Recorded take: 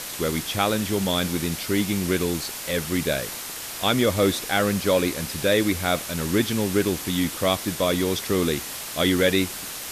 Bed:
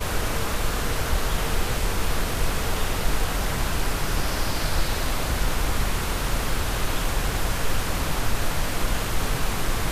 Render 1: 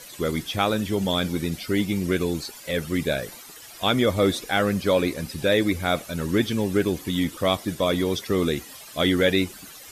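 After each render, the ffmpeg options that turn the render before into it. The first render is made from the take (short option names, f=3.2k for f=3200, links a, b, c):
-af "afftdn=nr=14:nf=-34"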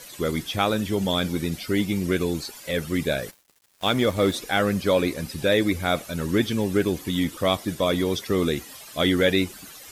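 -filter_complex "[0:a]asplit=3[a][b][c];[a]afade=t=out:st=3.3:d=0.02[d];[b]aeval=exprs='sgn(val(0))*max(abs(val(0))-0.0133,0)':c=same,afade=t=in:st=3.3:d=0.02,afade=t=out:st=4.33:d=0.02[e];[c]afade=t=in:st=4.33:d=0.02[f];[d][e][f]amix=inputs=3:normalize=0"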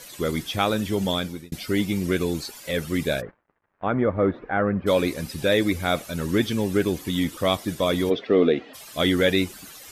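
-filter_complex "[0:a]asplit=3[a][b][c];[a]afade=t=out:st=3.2:d=0.02[d];[b]lowpass=f=1.7k:w=0.5412,lowpass=f=1.7k:w=1.3066,afade=t=in:st=3.2:d=0.02,afade=t=out:st=4.86:d=0.02[e];[c]afade=t=in:st=4.86:d=0.02[f];[d][e][f]amix=inputs=3:normalize=0,asplit=3[g][h][i];[g]afade=t=out:st=8.09:d=0.02[j];[h]highpass=180,equalizer=f=270:t=q:w=4:g=6,equalizer=f=460:t=q:w=4:g=8,equalizer=f=670:t=q:w=4:g=10,equalizer=f=970:t=q:w=4:g=-4,lowpass=f=3.4k:w=0.5412,lowpass=f=3.4k:w=1.3066,afade=t=in:st=8.09:d=0.02,afade=t=out:st=8.73:d=0.02[k];[i]afade=t=in:st=8.73:d=0.02[l];[j][k][l]amix=inputs=3:normalize=0,asplit=2[m][n];[m]atrim=end=1.52,asetpts=PTS-STARTPTS,afade=t=out:st=1.09:d=0.43[o];[n]atrim=start=1.52,asetpts=PTS-STARTPTS,afade=t=in:d=0.004:c=hsin[p];[o][p]concat=n=2:v=0:a=1"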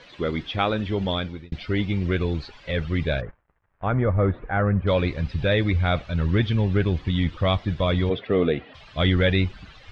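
-af "lowpass=f=3.7k:w=0.5412,lowpass=f=3.7k:w=1.3066,asubboost=boost=8.5:cutoff=96"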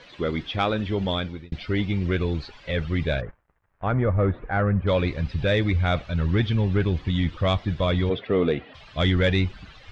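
-af "asoftclip=type=tanh:threshold=-9.5dB"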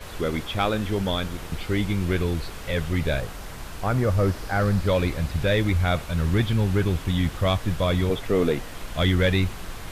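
-filter_complex "[1:a]volume=-12dB[a];[0:a][a]amix=inputs=2:normalize=0"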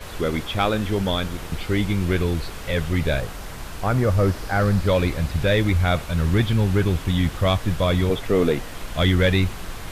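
-af "volume=2.5dB"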